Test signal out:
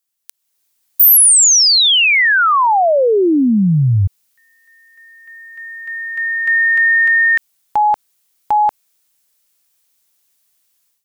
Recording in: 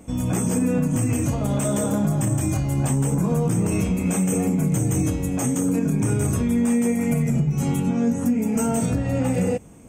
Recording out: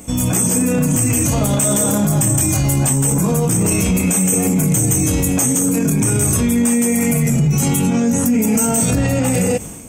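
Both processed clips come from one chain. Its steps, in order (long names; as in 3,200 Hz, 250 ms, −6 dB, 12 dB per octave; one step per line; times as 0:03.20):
high-shelf EQ 2,300 Hz +8.5 dB
automatic gain control gain up to 13 dB
brickwall limiter −15 dBFS
high-shelf EQ 7,100 Hz +5.5 dB
level +6 dB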